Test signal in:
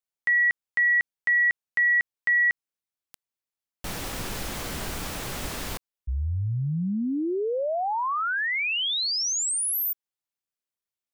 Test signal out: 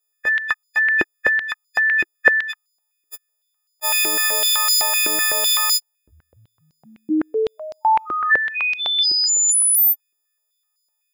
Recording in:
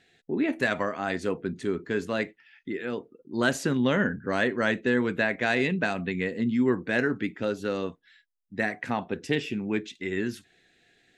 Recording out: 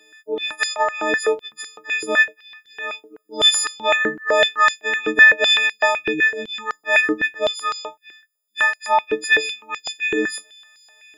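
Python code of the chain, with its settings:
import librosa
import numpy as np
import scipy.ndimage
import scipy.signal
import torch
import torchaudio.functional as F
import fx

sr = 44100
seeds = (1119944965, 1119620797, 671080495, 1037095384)

y = fx.freq_snap(x, sr, grid_st=6)
y = fx.filter_held_highpass(y, sr, hz=7.9, low_hz=350.0, high_hz=5100.0)
y = F.gain(torch.from_numpy(y), 2.0).numpy()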